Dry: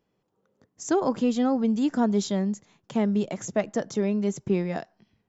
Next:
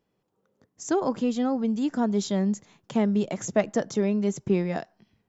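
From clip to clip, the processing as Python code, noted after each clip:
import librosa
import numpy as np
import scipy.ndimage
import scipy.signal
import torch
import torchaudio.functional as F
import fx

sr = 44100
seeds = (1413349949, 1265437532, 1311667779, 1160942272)

y = fx.rider(x, sr, range_db=5, speed_s=0.5)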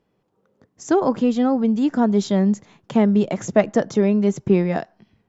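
y = fx.lowpass(x, sr, hz=3200.0, slope=6)
y = y * 10.0 ** (7.0 / 20.0)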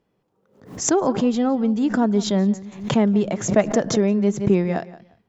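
y = fx.echo_feedback(x, sr, ms=175, feedback_pct=21, wet_db=-18.0)
y = fx.pre_swell(y, sr, db_per_s=110.0)
y = y * 10.0 ** (-1.5 / 20.0)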